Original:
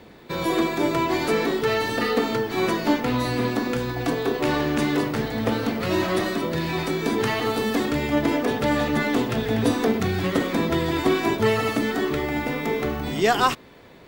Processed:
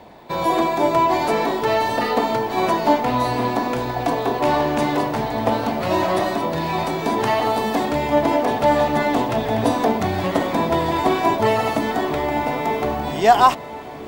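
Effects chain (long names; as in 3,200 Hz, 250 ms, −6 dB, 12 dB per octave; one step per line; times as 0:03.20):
flat-topped bell 780 Hz +10 dB 1 octave
feedback delay with all-pass diffusion 1,122 ms, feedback 58%, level −14 dB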